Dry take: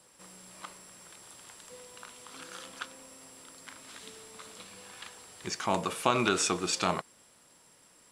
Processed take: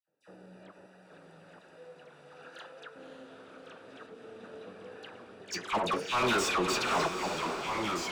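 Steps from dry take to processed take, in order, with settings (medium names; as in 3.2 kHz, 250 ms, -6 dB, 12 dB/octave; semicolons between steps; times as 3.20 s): local Wiener filter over 41 samples; gate with hold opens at -58 dBFS; 0.78–2.88 s: high-pass 640 Hz 12 dB/octave; slow attack 106 ms; flange 1 Hz, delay 6 ms, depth 5.6 ms, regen +60%; phase dispersion lows, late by 81 ms, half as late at 1.7 kHz; overdrive pedal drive 25 dB, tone 2.8 kHz, clips at -20.5 dBFS; echo that smears into a reverb 555 ms, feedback 49%, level -7.5 dB; ever faster or slower copies 792 ms, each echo -2 st, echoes 2, each echo -6 dB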